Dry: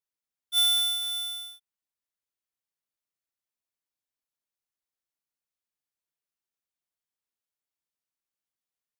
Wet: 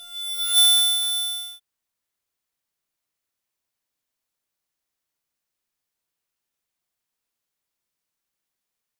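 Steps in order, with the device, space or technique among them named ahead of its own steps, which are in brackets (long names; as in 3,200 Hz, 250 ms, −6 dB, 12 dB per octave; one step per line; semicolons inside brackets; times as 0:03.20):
reverse reverb (reversed playback; convolution reverb RT60 1.6 s, pre-delay 31 ms, DRR 4.5 dB; reversed playback)
level +7.5 dB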